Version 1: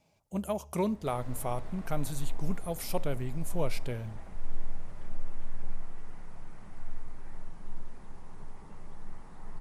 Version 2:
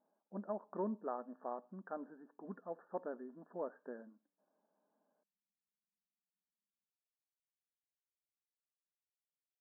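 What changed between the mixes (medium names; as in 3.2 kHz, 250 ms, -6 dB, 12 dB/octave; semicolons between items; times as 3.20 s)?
speech -8.0 dB; second sound: muted; master: add brick-wall FIR band-pass 190–1800 Hz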